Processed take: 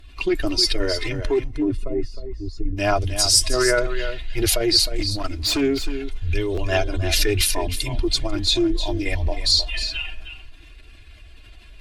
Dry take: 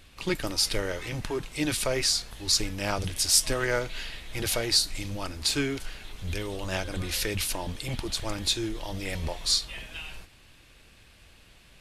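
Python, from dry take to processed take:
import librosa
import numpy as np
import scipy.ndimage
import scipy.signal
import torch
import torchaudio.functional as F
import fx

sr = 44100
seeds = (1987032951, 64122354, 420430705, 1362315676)

p1 = fx.spec_expand(x, sr, power=1.6)
p2 = fx.peak_eq(p1, sr, hz=150.0, db=-4.0, octaves=2.8)
p3 = p2 + 0.72 * np.pad(p2, (int(2.9 * sr / 1000.0), 0))[:len(p2)]
p4 = fx.over_compress(p3, sr, threshold_db=-27.0, ratio=-0.5)
p5 = p3 + F.gain(torch.from_numpy(p4), 0.0).numpy()
p6 = fx.moving_average(p5, sr, points=56, at=(1.43, 2.76), fade=0.02)
p7 = fx.clip_hard(p6, sr, threshold_db=-20.5, at=(4.86, 5.6), fade=0.02)
p8 = fx.cheby_harmonics(p7, sr, harmonics=(7, 8), levels_db=(-38, -43), full_scale_db=-3.5)
p9 = p8 + 10.0 ** (-10.0 / 20.0) * np.pad(p8, (int(311 * sr / 1000.0), 0))[:len(p8)]
p10 = fx.buffer_glitch(p9, sr, at_s=(6.54,), block=512, repeats=2)
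p11 = fx.doppler_dist(p10, sr, depth_ms=0.12)
y = F.gain(torch.from_numpy(p11), 3.5).numpy()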